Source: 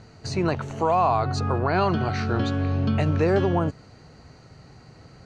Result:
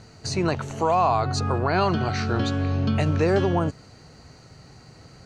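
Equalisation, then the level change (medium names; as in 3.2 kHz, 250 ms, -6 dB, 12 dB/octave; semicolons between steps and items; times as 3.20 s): treble shelf 5.2 kHz +10 dB; 0.0 dB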